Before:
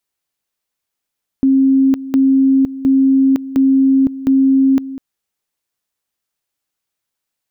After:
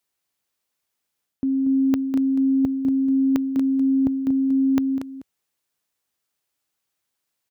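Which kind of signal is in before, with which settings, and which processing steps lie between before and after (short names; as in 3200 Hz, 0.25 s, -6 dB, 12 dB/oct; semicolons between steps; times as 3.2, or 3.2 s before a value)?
two-level tone 268 Hz -8 dBFS, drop 15.5 dB, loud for 0.51 s, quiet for 0.20 s, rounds 5
HPF 55 Hz; reverse; compressor 6:1, threshold -21 dBFS; reverse; echo 0.235 s -9 dB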